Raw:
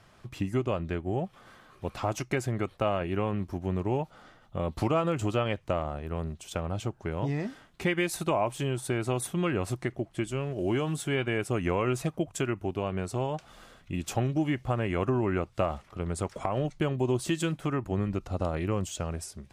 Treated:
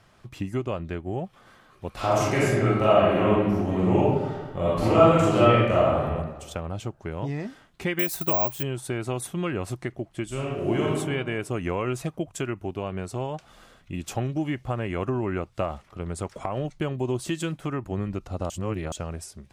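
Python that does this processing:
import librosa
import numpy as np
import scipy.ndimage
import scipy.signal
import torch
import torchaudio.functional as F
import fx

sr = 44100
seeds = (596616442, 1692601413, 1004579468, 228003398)

y = fx.reverb_throw(x, sr, start_s=1.94, length_s=4.1, rt60_s=1.3, drr_db=-8.5)
y = fx.resample_bad(y, sr, factor=2, down='none', up='zero_stuff', at=(7.99, 8.63))
y = fx.reverb_throw(y, sr, start_s=10.26, length_s=0.65, rt60_s=1.3, drr_db=-3.0)
y = fx.edit(y, sr, fx.reverse_span(start_s=18.5, length_s=0.42), tone=tone)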